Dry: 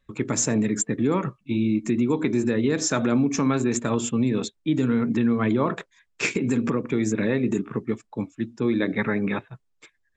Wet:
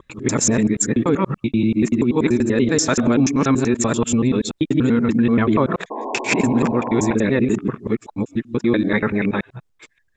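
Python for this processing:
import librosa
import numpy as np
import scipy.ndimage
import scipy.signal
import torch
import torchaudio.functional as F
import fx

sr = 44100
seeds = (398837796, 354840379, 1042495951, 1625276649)

y = fx.local_reverse(x, sr, ms=96.0)
y = fx.spec_paint(y, sr, seeds[0], shape='noise', start_s=5.9, length_s=1.25, low_hz=210.0, high_hz=1100.0, level_db=-33.0)
y = y * librosa.db_to_amplitude(5.5)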